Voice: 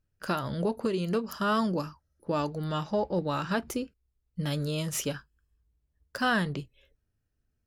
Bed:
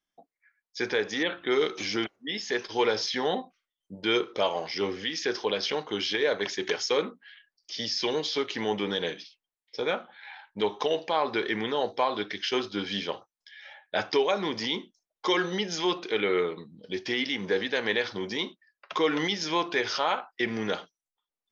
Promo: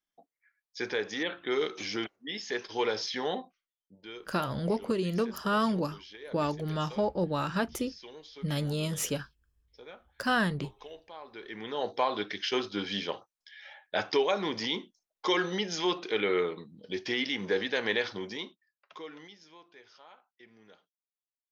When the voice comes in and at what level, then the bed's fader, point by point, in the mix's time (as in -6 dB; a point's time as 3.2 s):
4.05 s, -0.5 dB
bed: 3.45 s -4.5 dB
4.15 s -20 dB
11.28 s -20 dB
11.9 s -2 dB
18.07 s -2 dB
19.59 s -28 dB